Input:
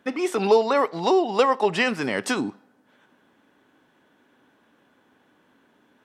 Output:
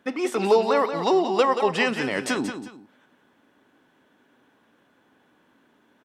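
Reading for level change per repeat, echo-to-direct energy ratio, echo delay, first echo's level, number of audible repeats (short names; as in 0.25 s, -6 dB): -10.5 dB, -8.5 dB, 0.18 s, -9.0 dB, 2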